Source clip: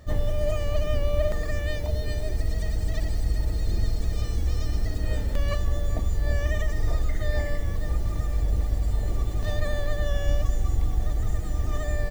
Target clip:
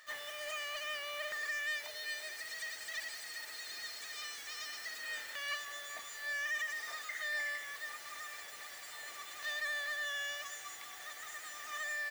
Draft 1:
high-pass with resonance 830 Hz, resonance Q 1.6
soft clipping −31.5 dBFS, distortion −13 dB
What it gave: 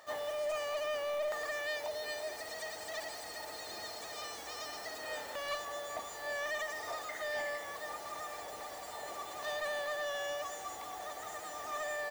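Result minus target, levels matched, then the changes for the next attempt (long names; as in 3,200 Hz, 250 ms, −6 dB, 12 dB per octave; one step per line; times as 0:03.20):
1,000 Hz band +6.5 dB
change: high-pass with resonance 1,700 Hz, resonance Q 1.6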